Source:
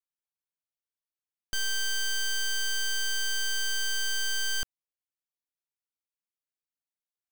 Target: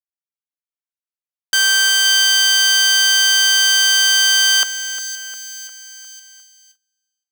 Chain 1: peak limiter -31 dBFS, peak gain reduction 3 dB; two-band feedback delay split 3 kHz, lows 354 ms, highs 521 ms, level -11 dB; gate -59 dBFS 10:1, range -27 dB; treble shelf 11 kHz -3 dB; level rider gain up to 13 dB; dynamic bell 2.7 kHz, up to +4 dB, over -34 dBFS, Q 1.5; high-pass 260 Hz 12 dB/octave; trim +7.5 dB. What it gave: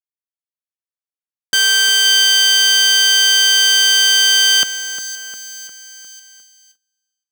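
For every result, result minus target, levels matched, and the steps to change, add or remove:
250 Hz band +10.5 dB; 1 kHz band -3.0 dB
change: high-pass 660 Hz 12 dB/octave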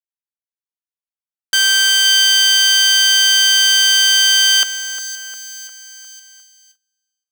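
1 kHz band -4.5 dB
change: dynamic bell 1 kHz, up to +4 dB, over -34 dBFS, Q 1.5

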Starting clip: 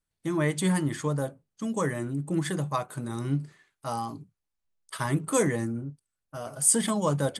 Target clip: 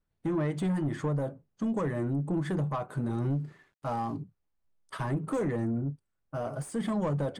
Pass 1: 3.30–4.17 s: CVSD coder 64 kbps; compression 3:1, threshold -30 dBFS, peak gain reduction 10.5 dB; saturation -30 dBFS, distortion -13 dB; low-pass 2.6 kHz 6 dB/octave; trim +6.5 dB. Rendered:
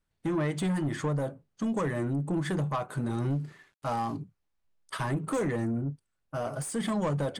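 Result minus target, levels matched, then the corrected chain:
2 kHz band +4.0 dB
3.30–4.17 s: CVSD coder 64 kbps; compression 3:1, threshold -30 dBFS, peak gain reduction 10.5 dB; saturation -30 dBFS, distortion -13 dB; low-pass 1 kHz 6 dB/octave; trim +6.5 dB

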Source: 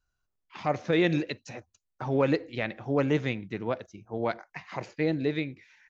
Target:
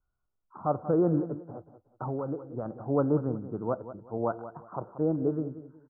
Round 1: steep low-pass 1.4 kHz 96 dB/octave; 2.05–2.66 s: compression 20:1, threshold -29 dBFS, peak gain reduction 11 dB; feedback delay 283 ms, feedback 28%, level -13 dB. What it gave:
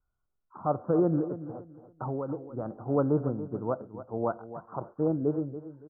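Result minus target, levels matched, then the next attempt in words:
echo 99 ms late
steep low-pass 1.4 kHz 96 dB/octave; 2.05–2.66 s: compression 20:1, threshold -29 dBFS, peak gain reduction 11 dB; feedback delay 184 ms, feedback 28%, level -13 dB

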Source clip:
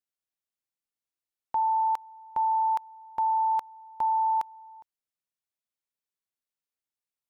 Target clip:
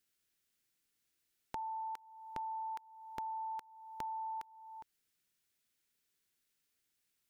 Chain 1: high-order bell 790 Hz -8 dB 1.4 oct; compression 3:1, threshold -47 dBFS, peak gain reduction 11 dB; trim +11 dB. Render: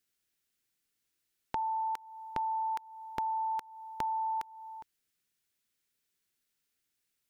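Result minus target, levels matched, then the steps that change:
compression: peak gain reduction -8 dB
change: compression 3:1, threshold -59 dBFS, peak gain reduction 19 dB

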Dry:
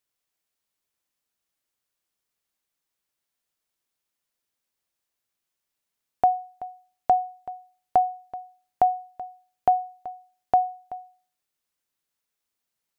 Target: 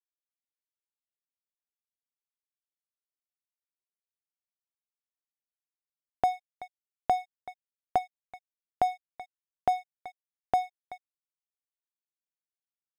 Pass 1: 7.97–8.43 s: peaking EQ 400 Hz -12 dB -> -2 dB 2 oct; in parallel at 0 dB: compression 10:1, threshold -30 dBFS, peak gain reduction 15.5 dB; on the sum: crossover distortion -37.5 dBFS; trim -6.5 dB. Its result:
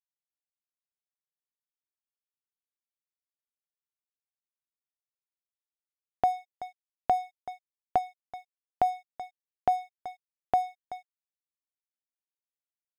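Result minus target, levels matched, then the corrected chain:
crossover distortion: distortion -5 dB
7.97–8.43 s: peaking EQ 400 Hz -12 dB -> -2 dB 2 oct; in parallel at 0 dB: compression 10:1, threshold -30 dBFS, peak gain reduction 15.5 dB; on the sum: crossover distortion -30.5 dBFS; trim -6.5 dB

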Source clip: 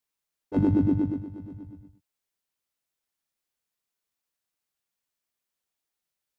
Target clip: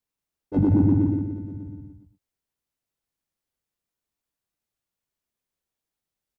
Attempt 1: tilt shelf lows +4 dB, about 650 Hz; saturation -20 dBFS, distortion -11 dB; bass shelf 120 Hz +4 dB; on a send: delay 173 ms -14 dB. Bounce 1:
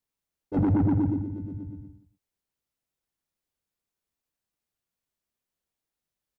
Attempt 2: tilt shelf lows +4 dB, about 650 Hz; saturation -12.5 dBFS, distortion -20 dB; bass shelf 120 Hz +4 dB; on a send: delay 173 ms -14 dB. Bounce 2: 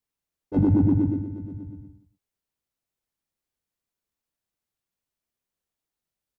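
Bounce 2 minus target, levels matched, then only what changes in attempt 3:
echo-to-direct -7.5 dB
change: delay 173 ms -6.5 dB

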